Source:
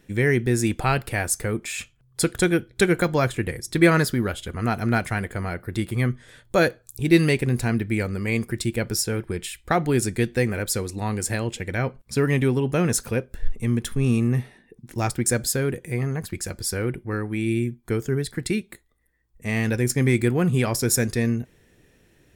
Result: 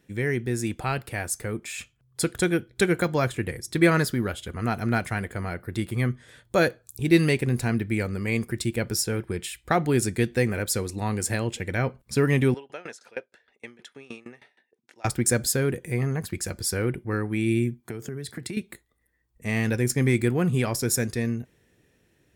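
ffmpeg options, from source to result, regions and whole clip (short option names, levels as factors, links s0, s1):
-filter_complex "[0:a]asettb=1/sr,asplit=3[s0][s1][s2];[s0]atrim=end=12.544[s3];[s1]atrim=start=12.54:end=15.05,asetpts=PTS-STARTPTS,afade=t=in:d=0.004:c=qsin,afade=t=out:st=2.506:d=0.004:c=qsin,highpass=610,lowpass=4900,bandreject=f=1100:w=6.5,aeval=exprs='val(0)*pow(10,-23*if(lt(mod(6.4*n/s,1),2*abs(6.4)/1000),1-mod(6.4*n/s,1)/(2*abs(6.4)/1000),(mod(6.4*n/s,1)-2*abs(6.4)/1000)/(1-2*abs(6.4)/1000))/20)':c=same[s4];[s2]atrim=start=15.046[s5];[s3][s4]acrossfade=d=0.004:c1=hsin:c2=qsin[s6];[s6][s5]acrossfade=d=0.004:c1=qsin:c2=hsin,asettb=1/sr,asplit=3[s7][s8][s9];[s7]atrim=end=17.804[s10];[s8]atrim=start=17.8:end=18.57,asetpts=PTS-STARTPTS,afade=t=in:d=0.004:c=qsin,afade=t=out:st=0.766:d=0.004:c=qsin,highpass=f=82:w=0.5412,highpass=f=82:w=1.3066,acompressor=threshold=0.0355:ratio=16:attack=3.2:release=140:knee=1:detection=peak[s11];[s9]atrim=start=18.566[s12];[s10][s11]acrossfade=d=0.004:c1=hsin:c2=qsin[s13];[s13][s12]acrossfade=d=0.004:c1=qsin:c2=hsin,highpass=49,dynaudnorm=f=410:g=9:m=2.24,volume=0.501"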